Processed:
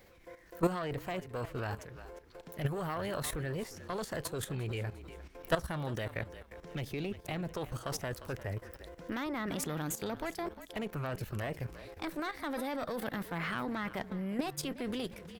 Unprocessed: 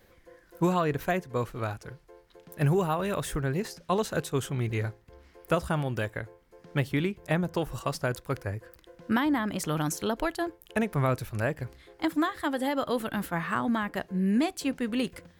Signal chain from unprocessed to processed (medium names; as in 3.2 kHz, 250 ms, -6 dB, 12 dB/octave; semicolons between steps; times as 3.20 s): single-diode clipper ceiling -25 dBFS; formant shift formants +2 st; in parallel at -1 dB: compression 12:1, threshold -42 dBFS, peak gain reduction 19.5 dB; on the sum: frequency-shifting echo 352 ms, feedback 38%, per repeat -43 Hz, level -16 dB; level held to a coarse grid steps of 12 dB